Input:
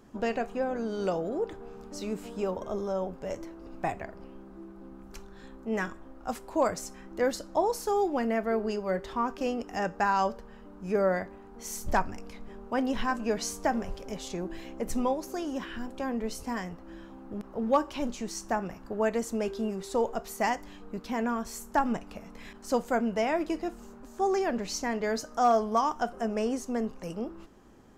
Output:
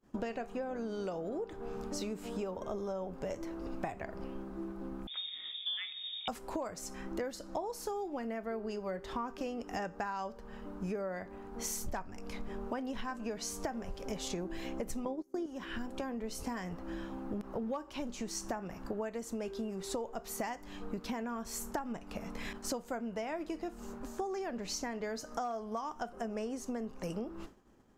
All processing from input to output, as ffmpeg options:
ffmpeg -i in.wav -filter_complex "[0:a]asettb=1/sr,asplit=3[link_01][link_02][link_03];[link_01]atrim=end=5.074[link_04];[link_02]atrim=start=5.07:end=6.28,asetpts=PTS-STARTPTS,afade=type=in:duration=0.004:curve=qsin,afade=type=out:start_time=1.206:duration=0.004:curve=qsin,acrossover=split=2700[link_05][link_06];[link_06]acompressor=threshold=-54dB:ratio=4:attack=1:release=60[link_07];[link_05][link_07]amix=inputs=2:normalize=0,equalizer=frequency=930:width_type=o:width=1.1:gain=-10,lowpass=frequency=3100:width_type=q:width=0.5098,lowpass=frequency=3100:width_type=q:width=0.6013,lowpass=frequency=3100:width_type=q:width=0.9,lowpass=frequency=3100:width_type=q:width=2.563,afreqshift=-3700[link_08];[link_03]atrim=start=6.276[link_09];[link_04][link_08]acrossfade=duration=0.004:curve1=hsin:curve2=qsin[link_10];[link_10][link_09]acrossfade=duration=0.004:curve1=qsin:curve2=hsin,asettb=1/sr,asplit=3[link_11][link_12][link_13];[link_11]atrim=end=15.054[link_14];[link_12]atrim=start=15.05:end=15.46,asetpts=PTS-STARTPTS,afade=type=in:duration=0.004:curve=qsin,afade=type=out:start_time=0.406:duration=0.004:curve=qsin,equalizer=frequency=320:width=1.2:gain=14.5,agate=range=-24dB:threshold=-24dB:ratio=16:release=100:detection=peak,bandreject=frequency=2700:width=8[link_15];[link_13]atrim=start=15.456[link_16];[link_14][link_15]acrossfade=duration=0.004:curve1=hsin:curve2=qsin[link_17];[link_17][link_16]acrossfade=duration=0.004:curve1=qsin:curve2=hsin,agate=range=-33dB:threshold=-45dB:ratio=3:detection=peak,acompressor=threshold=-40dB:ratio=16,volume=5.5dB" out.wav

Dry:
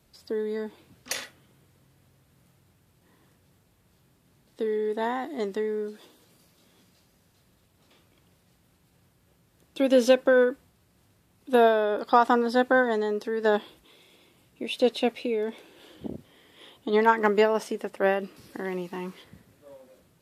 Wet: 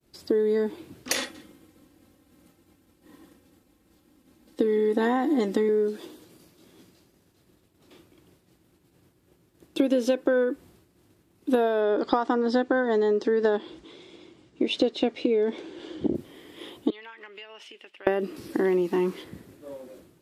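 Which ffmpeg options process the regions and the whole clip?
ffmpeg -i in.wav -filter_complex "[0:a]asettb=1/sr,asplit=3[link_01][link_02][link_03];[link_01]atrim=end=1.174[link_04];[link_02]atrim=start=1.17:end=5.69,asetpts=PTS-STARTPTS,afade=type=in:duration=0.004:curve=qsin,afade=type=out:start_time=4.516:duration=0.004:curve=qsin,aecho=1:1:3.8:0.68,atrim=end_sample=199332,aecho=1:1:175:0.0794,atrim=end_sample=199332[link_05];[link_03]atrim=start=5.686[link_06];[link_04][link_05]acrossfade=duration=0.004:curve1=hsin:curve2=qsin[link_07];[link_07][link_06]acrossfade=duration=0.004:curve1=qsin:curve2=hsin,asettb=1/sr,asplit=3[link_08][link_09][link_10];[link_08]atrim=end=11.814[link_11];[link_09]atrim=start=11.81:end=16.15,asetpts=PTS-STARTPTS,afade=type=in:duration=0.004:curve=qsin,afade=type=out:start_time=4.336:duration=0.004:curve=qsin,lowpass=frequency=7100:width=0.5412,lowpass=frequency=7100:width=1.3066,bandreject=frequency=2600:width=16[link_12];[link_10]atrim=start=16.146[link_13];[link_11][link_12]acrossfade=duration=0.004:curve1=hsin:curve2=qsin[link_14];[link_14][link_13]acrossfade=duration=0.004:curve1=qsin:curve2=hsin,asettb=1/sr,asplit=3[link_15][link_16][link_17];[link_15]atrim=end=16.904[link_18];[link_16]atrim=start=16.9:end=18.07,asetpts=PTS-STARTPTS,afade=type=in:duration=0.004:curve=qsin,afade=type=out:start_time=1.166:duration=0.004:curve=qsin,bandpass=frequency=2800:width_type=q:width=3.9,acompressor=threshold=-48dB:ratio=4:attack=3.2:release=140:knee=1:detection=peak[link_19];[link_17]atrim=start=18.066[link_20];[link_18][link_19]acrossfade=duration=0.004:curve1=hsin:curve2=qsin[link_21];[link_21][link_20]acrossfade=duration=0.004:curve1=qsin:curve2=hsin,agate=range=-33dB:threshold=-57dB:ratio=3:detection=peak,equalizer=frequency=330:width_type=o:width=0.67:gain=11.5,acompressor=threshold=-25dB:ratio=10,volume=5.5dB" out.wav

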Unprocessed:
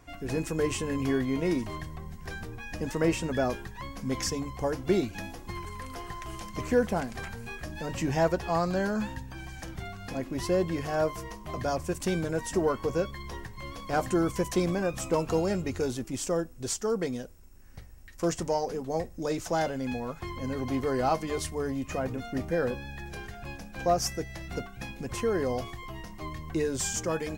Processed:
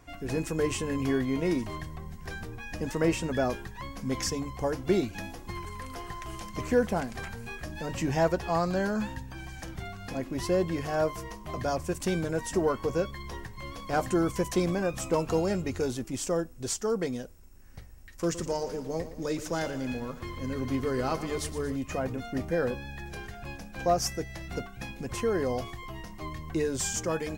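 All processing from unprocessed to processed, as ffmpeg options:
ffmpeg -i in.wav -filter_complex "[0:a]asettb=1/sr,asplit=3[link_01][link_02][link_03];[link_01]atrim=end=18.224[link_04];[link_02]atrim=start=18.22:end=21.76,asetpts=PTS-STARTPTS,afade=type=in:duration=0.004:curve=qsin,afade=type=out:start_time=3.536:duration=0.004:curve=qsin,equalizer=frequency=750:width=2.7:gain=-8.5,aecho=1:1:116|232|348|464|580|696:0.224|0.128|0.0727|0.0415|0.0236|0.0135,atrim=end_sample=156114,aeval=exprs='sgn(val(0))*max(abs(val(0))-0.00141,0)':channel_layout=same[link_05];[link_03]atrim=start=21.756[link_06];[link_04][link_05]acrossfade=duration=0.004:curve1=hsin:curve2=qsin[link_07];[link_07][link_06]acrossfade=duration=0.004:curve1=qsin:curve2=hsin" out.wav

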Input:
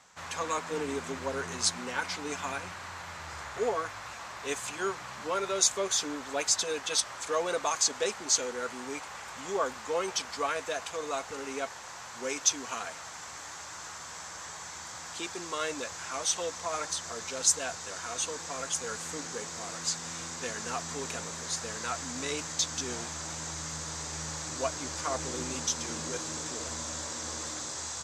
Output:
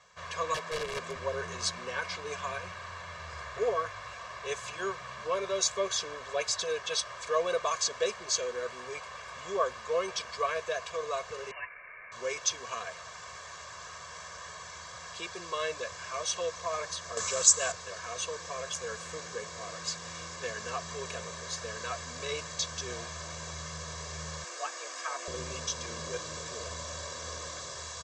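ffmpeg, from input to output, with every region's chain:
ffmpeg -i in.wav -filter_complex "[0:a]asettb=1/sr,asplit=3[link_01][link_02][link_03];[link_01]atrim=end=0.544[link_04];[link_02]atrim=start=0.54:end=1.16,asetpts=PTS-STARTPTS,afade=type=in:duration=0.004:curve=qsin,afade=type=out:start_time=0.616:duration=0.004:curve=qsin,highpass=frequency=110:width=0.5412,highpass=frequency=110:width=1.3066,aeval=exprs='(mod(21.1*val(0)+1,2)-1)/21.1':channel_layout=same[link_05];[link_03]atrim=start=1.156[link_06];[link_04][link_05]acrossfade=duration=0.004:curve1=hsin:curve2=qsin[link_07];[link_07][link_06]acrossfade=duration=0.004:curve1=qsin:curve2=hsin,asettb=1/sr,asplit=3[link_08][link_09][link_10];[link_08]atrim=end=11.514[link_11];[link_09]atrim=start=11.51:end=12.12,asetpts=PTS-STARTPTS,afade=type=in:duration=0.004:curve=qsin,afade=type=out:start_time=0.606:duration=0.004:curve=qsin,highpass=940,lowpass=frequency=2700:width_type=q:width=0.5098,lowpass=frequency=2700:width_type=q:width=0.6013,lowpass=frequency=2700:width_type=q:width=0.9,lowpass=frequency=2700:width_type=q:width=2.563,afreqshift=-3200[link_12];[link_10]atrim=start=12.116[link_13];[link_11][link_12]acrossfade=duration=0.004:curve1=hsin:curve2=qsin[link_14];[link_14][link_13]acrossfade=duration=0.004:curve1=qsin:curve2=hsin,asettb=1/sr,asplit=3[link_15][link_16][link_17];[link_15]atrim=end=17.174[link_18];[link_16]atrim=start=17.17:end=17.72,asetpts=PTS-STARTPTS,afade=type=in:duration=0.004:curve=qsin,afade=type=out:start_time=0.546:duration=0.004:curve=qsin,lowpass=frequency=7700:width_type=q:width=5,equalizer=frequency=1200:width_type=o:width=0.38:gain=5.5,acompressor=mode=upward:threshold=-21dB:ratio=2.5:attack=3.2:release=140:knee=2.83:detection=peak[link_19];[link_17]atrim=start=17.716[link_20];[link_18][link_19]acrossfade=duration=0.004:curve1=hsin:curve2=qsin[link_21];[link_21][link_20]acrossfade=duration=0.004:curve1=qsin:curve2=hsin,asettb=1/sr,asplit=3[link_22][link_23][link_24];[link_22]atrim=end=24.444[link_25];[link_23]atrim=start=24.44:end=25.28,asetpts=PTS-STARTPTS,afade=type=in:duration=0.004:curve=qsin,afade=type=out:start_time=0.836:duration=0.004:curve=qsin,equalizer=frequency=230:width=1.2:gain=-10,bandreject=frequency=3900:width=23,afreqshift=190[link_26];[link_24]atrim=start=25.276[link_27];[link_25][link_26]acrossfade=duration=0.004:curve1=hsin:curve2=qsin[link_28];[link_28][link_27]acrossfade=duration=0.004:curve1=qsin:curve2=hsin,lowpass=5500,aecho=1:1:1.8:0.98,volume=-3.5dB" out.wav

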